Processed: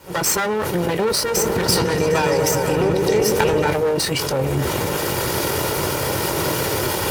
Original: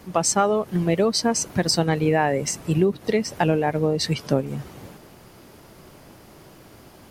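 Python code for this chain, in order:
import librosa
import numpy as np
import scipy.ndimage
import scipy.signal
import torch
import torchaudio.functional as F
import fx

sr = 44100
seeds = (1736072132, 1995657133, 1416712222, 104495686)

y = fx.lower_of_two(x, sr, delay_ms=2.1)
y = fx.recorder_agc(y, sr, target_db=-15.5, rise_db_per_s=79.0, max_gain_db=30)
y = scipy.signal.sosfilt(scipy.signal.butter(2, 82.0, 'highpass', fs=sr, output='sos'), y)
y = fx.high_shelf(y, sr, hz=8200.0, db=3.5)
y = fx.doubler(y, sr, ms=23.0, db=-12)
y = fx.echo_opening(y, sr, ms=126, hz=400, octaves=1, feedback_pct=70, wet_db=0, at=(1.33, 3.7), fade=0.02)
y = fx.sustainer(y, sr, db_per_s=26.0)
y = F.gain(torch.from_numpy(y), 2.0).numpy()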